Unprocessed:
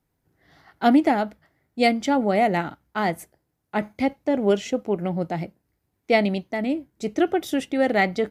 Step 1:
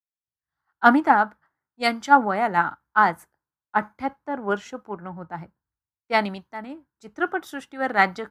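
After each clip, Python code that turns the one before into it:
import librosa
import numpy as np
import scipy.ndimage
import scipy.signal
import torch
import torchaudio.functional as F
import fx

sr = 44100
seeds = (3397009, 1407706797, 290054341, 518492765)

y = fx.band_shelf(x, sr, hz=1200.0, db=15.5, octaves=1.2)
y = fx.band_widen(y, sr, depth_pct=100)
y = y * 10.0 ** (-6.5 / 20.0)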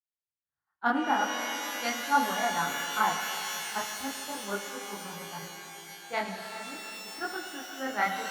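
y = fx.chorus_voices(x, sr, voices=2, hz=0.89, base_ms=26, depth_ms=4.1, mix_pct=50)
y = fx.rev_shimmer(y, sr, seeds[0], rt60_s=3.8, semitones=12, shimmer_db=-2, drr_db=5.5)
y = y * 10.0 ** (-7.5 / 20.0)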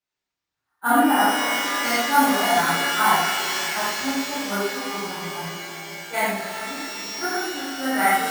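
y = np.repeat(x[::4], 4)[:len(x)]
y = fx.rev_gated(y, sr, seeds[1], gate_ms=140, shape='flat', drr_db=-7.5)
y = y * 10.0 ** (1.5 / 20.0)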